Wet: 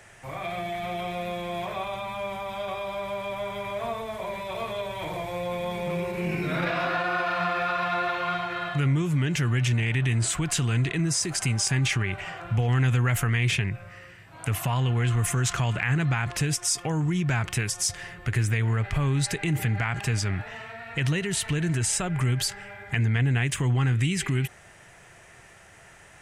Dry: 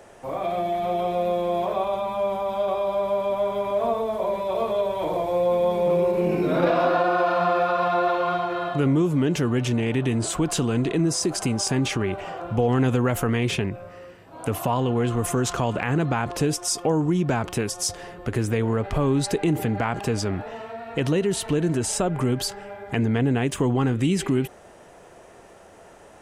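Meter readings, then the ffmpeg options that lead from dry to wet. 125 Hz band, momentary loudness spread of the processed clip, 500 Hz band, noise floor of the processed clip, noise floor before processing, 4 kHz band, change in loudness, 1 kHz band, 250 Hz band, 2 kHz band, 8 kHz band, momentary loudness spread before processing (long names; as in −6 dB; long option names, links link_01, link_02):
+2.0 dB, 9 LU, −10.0 dB, −51 dBFS, −48 dBFS, +0.5 dB, −3.0 dB, −5.5 dB, −7.0 dB, +3.0 dB, +1.0 dB, 7 LU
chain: -filter_complex "[0:a]equalizer=frequency=125:width_type=o:width=1:gain=7,equalizer=frequency=250:width_type=o:width=1:gain=-8,equalizer=frequency=500:width_type=o:width=1:gain=-9,equalizer=frequency=1000:width_type=o:width=1:gain=-4,equalizer=frequency=2000:width_type=o:width=1:gain=9,equalizer=frequency=8000:width_type=o:width=1:gain=4,asplit=2[link_01][link_02];[link_02]alimiter=limit=-17dB:level=0:latency=1:release=79,volume=0dB[link_03];[link_01][link_03]amix=inputs=2:normalize=0,volume=-7dB"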